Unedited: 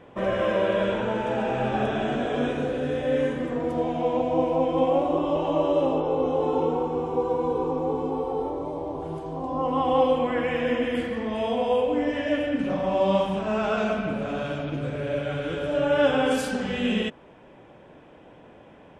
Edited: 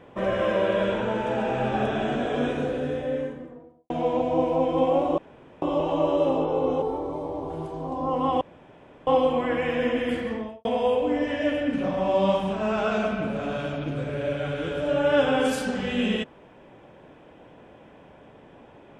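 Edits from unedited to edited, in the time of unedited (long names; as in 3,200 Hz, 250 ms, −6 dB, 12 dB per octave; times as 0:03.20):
0:02.60–0:03.90: fade out and dull
0:05.18: splice in room tone 0.44 s
0:06.38–0:08.34: remove
0:09.93: splice in room tone 0.66 s
0:11.15–0:11.51: fade out and dull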